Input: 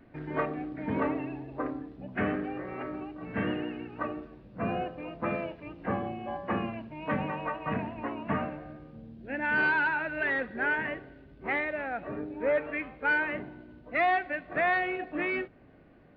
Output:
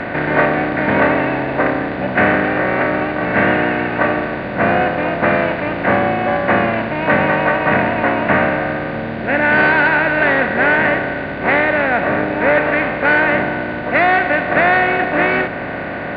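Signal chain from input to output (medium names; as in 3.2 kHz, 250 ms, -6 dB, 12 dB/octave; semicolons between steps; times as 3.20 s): spectral levelling over time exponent 0.4; trim +9 dB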